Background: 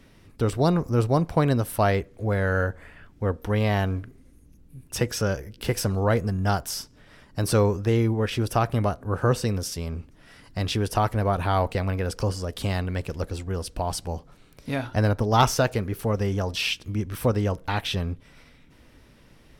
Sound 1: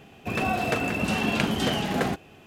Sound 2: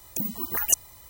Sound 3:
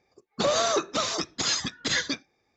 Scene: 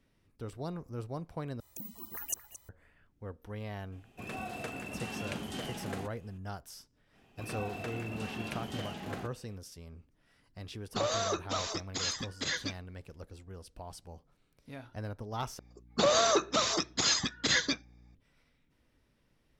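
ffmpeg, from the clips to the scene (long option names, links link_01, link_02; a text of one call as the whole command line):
ffmpeg -i bed.wav -i cue0.wav -i cue1.wav -i cue2.wav -filter_complex "[1:a]asplit=2[link_01][link_02];[3:a]asplit=2[link_03][link_04];[0:a]volume=-18dB[link_05];[2:a]asplit=2[link_06][link_07];[link_07]adelay=221.6,volume=-11dB,highshelf=frequency=4000:gain=-4.99[link_08];[link_06][link_08]amix=inputs=2:normalize=0[link_09];[link_01]equalizer=frequency=9200:width_type=o:width=0.9:gain=6[link_10];[link_04]aeval=exprs='val(0)+0.00178*(sin(2*PI*60*n/s)+sin(2*PI*2*60*n/s)/2+sin(2*PI*3*60*n/s)/3+sin(2*PI*4*60*n/s)/4+sin(2*PI*5*60*n/s)/5)':channel_layout=same[link_11];[link_05]asplit=3[link_12][link_13][link_14];[link_12]atrim=end=1.604[link_15];[link_09]atrim=end=1.09,asetpts=PTS-STARTPTS,volume=-14.5dB[link_16];[link_13]atrim=start=2.686:end=15.594[link_17];[link_11]atrim=end=2.56,asetpts=PTS-STARTPTS,volume=-1.5dB[link_18];[link_14]atrim=start=18.146[link_19];[link_10]atrim=end=2.46,asetpts=PTS-STARTPTS,volume=-14.5dB,afade=type=in:duration=0.004:curve=hsin,afade=type=out:start_time=2.456:duration=0.004:curve=hsin,adelay=3920[link_20];[link_02]atrim=end=2.46,asetpts=PTS-STARTPTS,volume=-15dB,afade=type=in:duration=0.05,afade=type=out:start_time=2.41:duration=0.05,adelay=7120[link_21];[link_03]atrim=end=2.56,asetpts=PTS-STARTPTS,volume=-8dB,afade=type=in:duration=0.004:curve=hsin,afade=type=out:start_time=2.556:duration=0.004:curve=hsin,adelay=10560[link_22];[link_15][link_16]acrossfade=duration=0.004:curve1=hsin:curve2=hsin[link_23];[link_23][link_17]acrossfade=duration=0.004:curve1=hsin:curve2=hsin[link_24];[link_24][link_18]acrossfade=duration=0.004:curve1=hsin:curve2=hsin[link_25];[link_25][link_19]acrossfade=duration=0.004:curve1=hsin:curve2=hsin[link_26];[link_26][link_20][link_21][link_22]amix=inputs=4:normalize=0" out.wav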